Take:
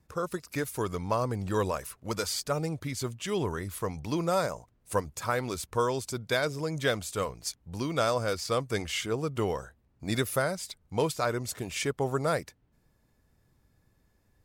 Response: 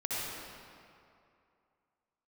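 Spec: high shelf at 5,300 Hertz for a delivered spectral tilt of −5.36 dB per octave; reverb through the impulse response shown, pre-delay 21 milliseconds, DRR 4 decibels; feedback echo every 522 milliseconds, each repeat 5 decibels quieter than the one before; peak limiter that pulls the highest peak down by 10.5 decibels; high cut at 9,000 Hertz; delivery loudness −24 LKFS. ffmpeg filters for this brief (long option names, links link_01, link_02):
-filter_complex "[0:a]lowpass=9000,highshelf=frequency=5300:gain=-9,alimiter=level_in=1dB:limit=-24dB:level=0:latency=1,volume=-1dB,aecho=1:1:522|1044|1566|2088|2610|3132|3654:0.562|0.315|0.176|0.0988|0.0553|0.031|0.0173,asplit=2[link_01][link_02];[1:a]atrim=start_sample=2205,adelay=21[link_03];[link_02][link_03]afir=irnorm=-1:irlink=0,volume=-10dB[link_04];[link_01][link_04]amix=inputs=2:normalize=0,volume=9.5dB"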